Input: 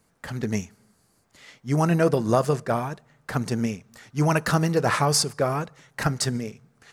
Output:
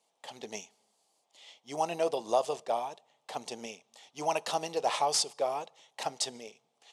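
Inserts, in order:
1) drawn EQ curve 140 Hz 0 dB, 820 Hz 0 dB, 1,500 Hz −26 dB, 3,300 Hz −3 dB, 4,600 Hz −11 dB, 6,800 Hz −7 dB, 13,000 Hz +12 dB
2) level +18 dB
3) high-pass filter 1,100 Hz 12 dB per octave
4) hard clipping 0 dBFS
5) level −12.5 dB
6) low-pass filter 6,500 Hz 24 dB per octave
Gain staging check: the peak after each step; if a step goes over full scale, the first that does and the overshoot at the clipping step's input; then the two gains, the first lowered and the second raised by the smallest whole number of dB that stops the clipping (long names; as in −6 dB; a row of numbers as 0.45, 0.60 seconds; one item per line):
−7.5, +10.5, +7.5, 0.0, −12.5, −13.5 dBFS
step 2, 7.5 dB
step 2 +10 dB, step 5 −4.5 dB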